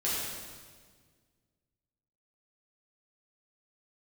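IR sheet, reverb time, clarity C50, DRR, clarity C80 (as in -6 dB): 1.6 s, -1.5 dB, -9.0 dB, 0.5 dB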